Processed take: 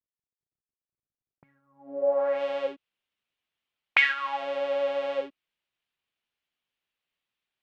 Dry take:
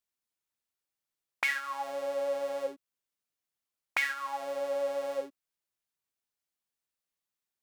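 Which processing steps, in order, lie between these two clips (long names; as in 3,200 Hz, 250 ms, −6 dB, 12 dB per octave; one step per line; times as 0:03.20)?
low-pass filter sweep 140 Hz → 3,000 Hz, 0:01.75–0:02.42
level +4 dB
Opus 64 kbit/s 48,000 Hz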